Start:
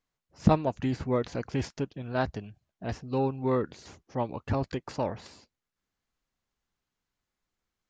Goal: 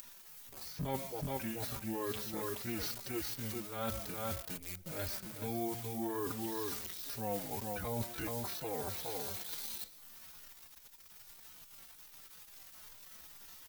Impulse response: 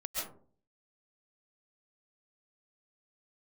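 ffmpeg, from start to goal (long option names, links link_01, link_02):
-filter_complex "[0:a]equalizer=frequency=1900:width=0.36:gain=5.5,asetrate=25442,aresample=44100,aecho=1:1:425:0.501,asetrate=66075,aresample=44100,atempo=0.66742,asplit=2[link_01][link_02];[1:a]atrim=start_sample=2205[link_03];[link_02][link_03]afir=irnorm=-1:irlink=0,volume=-21dB[link_04];[link_01][link_04]amix=inputs=2:normalize=0,acompressor=mode=upward:threshold=-35dB:ratio=2.5,acrusher=bits=8:dc=4:mix=0:aa=0.000001,aemphasis=mode=production:type=75fm,areverse,acompressor=threshold=-32dB:ratio=8,areverse,asplit=2[link_05][link_06];[link_06]adelay=4.4,afreqshift=-2.4[link_07];[link_05][link_07]amix=inputs=2:normalize=1"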